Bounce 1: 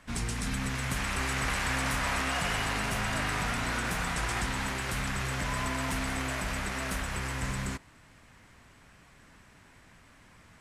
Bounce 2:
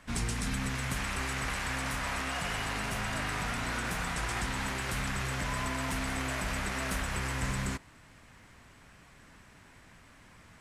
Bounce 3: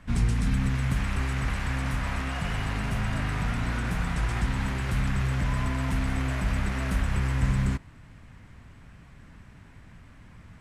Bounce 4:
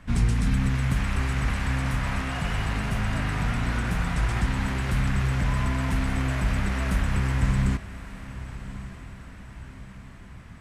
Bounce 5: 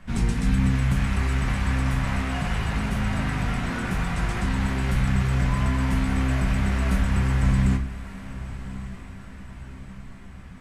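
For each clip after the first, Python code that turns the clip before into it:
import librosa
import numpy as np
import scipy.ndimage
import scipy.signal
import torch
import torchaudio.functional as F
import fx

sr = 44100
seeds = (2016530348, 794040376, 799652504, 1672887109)

y1 = fx.rider(x, sr, range_db=10, speed_s=0.5)
y1 = y1 * librosa.db_to_amplitude(-2.0)
y2 = fx.bass_treble(y1, sr, bass_db=11, treble_db=-6)
y3 = fx.echo_diffused(y2, sr, ms=1193, feedback_pct=51, wet_db=-14.5)
y3 = y3 * librosa.db_to_amplitude(2.0)
y4 = fx.room_shoebox(y3, sr, seeds[0], volume_m3=170.0, walls='furnished', distance_m=1.1)
y4 = y4 * librosa.db_to_amplitude(-1.0)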